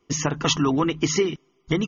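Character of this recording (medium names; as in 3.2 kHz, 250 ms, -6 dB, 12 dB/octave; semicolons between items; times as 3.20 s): noise floor -66 dBFS; spectral tilt -4.0 dB/octave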